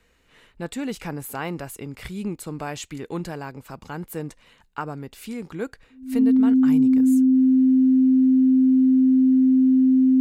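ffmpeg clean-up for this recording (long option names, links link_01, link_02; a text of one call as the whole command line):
ffmpeg -i in.wav -af "bandreject=frequency=260:width=30" out.wav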